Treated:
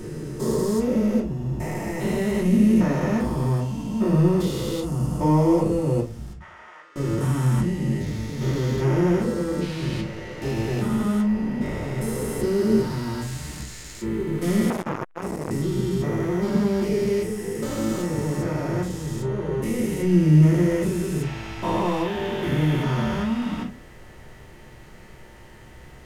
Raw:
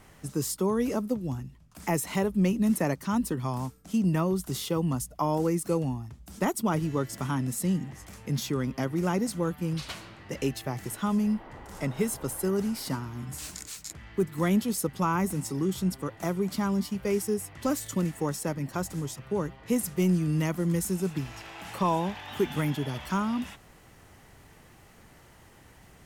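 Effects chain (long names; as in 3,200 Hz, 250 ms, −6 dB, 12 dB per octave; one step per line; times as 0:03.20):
spectrum averaged block by block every 400 ms
0:06.33–0:06.96: four-pole ladder band-pass 1,900 Hz, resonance 25%
convolution reverb RT60 0.30 s, pre-delay 3 ms, DRR −6.5 dB
0:14.70–0:15.51: saturating transformer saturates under 970 Hz
level +1.5 dB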